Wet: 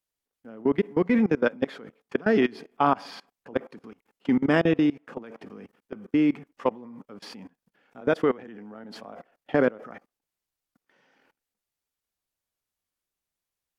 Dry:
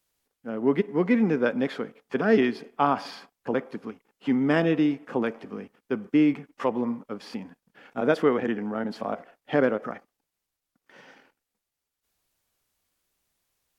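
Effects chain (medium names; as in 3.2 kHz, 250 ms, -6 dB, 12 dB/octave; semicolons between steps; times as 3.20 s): level held to a coarse grid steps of 23 dB; trim +3.5 dB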